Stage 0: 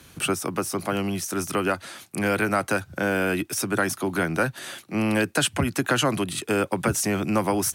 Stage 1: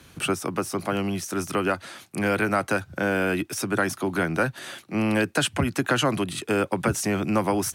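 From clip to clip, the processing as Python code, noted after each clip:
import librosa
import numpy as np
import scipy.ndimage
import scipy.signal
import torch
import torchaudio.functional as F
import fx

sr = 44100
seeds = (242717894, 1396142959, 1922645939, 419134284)

y = fx.high_shelf(x, sr, hz=6600.0, db=-6.0)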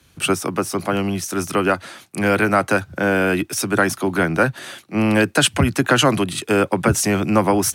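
y = fx.band_widen(x, sr, depth_pct=40)
y = y * 10.0 ** (6.5 / 20.0)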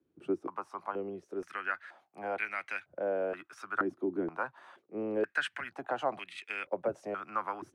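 y = fx.filter_held_bandpass(x, sr, hz=2.1, low_hz=340.0, high_hz=2200.0)
y = y * 10.0 ** (-7.0 / 20.0)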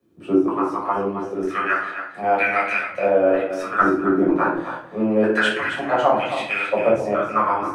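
y = x + 10.0 ** (-9.5 / 20.0) * np.pad(x, (int(269 * sr / 1000.0), 0))[:len(x)]
y = fx.room_shoebox(y, sr, seeds[0], volume_m3=560.0, walls='furnished', distance_m=6.0)
y = y * 10.0 ** (6.5 / 20.0)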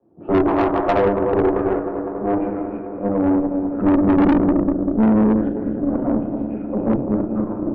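y = fx.filter_sweep_lowpass(x, sr, from_hz=770.0, to_hz=260.0, start_s=0.46, end_s=2.83, q=3.9)
y = fx.echo_bbd(y, sr, ms=196, stages=4096, feedback_pct=85, wet_db=-12.0)
y = fx.tube_stage(y, sr, drive_db=18.0, bias=0.75)
y = y * 10.0 ** (6.5 / 20.0)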